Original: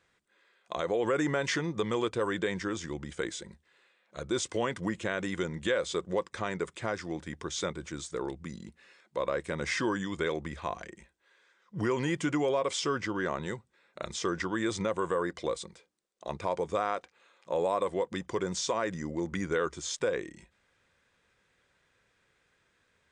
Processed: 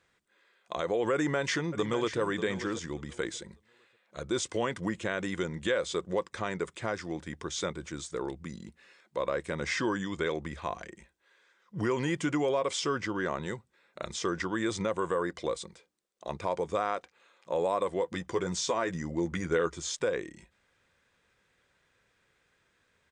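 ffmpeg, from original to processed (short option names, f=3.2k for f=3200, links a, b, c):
-filter_complex "[0:a]asplit=2[a][b];[b]afade=t=in:st=1.13:d=0.01,afade=t=out:st=2.19:d=0.01,aecho=0:1:590|1180|1770:0.266073|0.0532145|0.0106429[c];[a][c]amix=inputs=2:normalize=0,asettb=1/sr,asplit=3[d][e][f];[d]atrim=end=9.614[g];[e]atrim=start=9.61:end=10.41,asetpts=PTS-STARTPTS,afade=t=in:d=0.004:c=qsin,afade=t=out:st=0.796:d=0.004:c=qsin,lowpass=f=8.7k:w=0.5412,lowpass=f=8.7k:w=1.3066[h];[f]atrim=start=10.406[i];[g][h]acrossfade=d=0.004:c1=hsin:c2=qsin[j];[j][i]acrossfade=d=0.004:c1=qsin:c2=hsin,asettb=1/sr,asplit=3[k][l][m];[k]atrim=end=18.024[n];[l]atrim=start=18.02:end=19.91,asetpts=PTS-STARTPTS,afade=t=in:d=0.004:c=qsin,afade=t=out:st=1.886:d=0.004:c=qsin,asplit=2[o][p];[p]adelay=12,volume=-7dB[q];[o][q]amix=inputs=2:normalize=0,atrim=end_sample=83349[r];[m]atrim=start=19.906[s];[n][r]acrossfade=d=0.004:c1=hsin:c2=qsin[t];[t][s]acrossfade=d=0.004:c1=qsin:c2=hsin"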